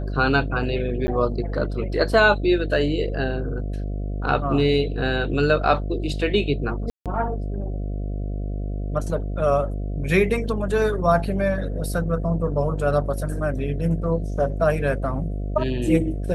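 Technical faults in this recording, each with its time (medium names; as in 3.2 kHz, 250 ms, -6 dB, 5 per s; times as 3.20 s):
buzz 50 Hz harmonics 14 -27 dBFS
1.07–1.08 s: dropout 10 ms
6.90–7.06 s: dropout 157 ms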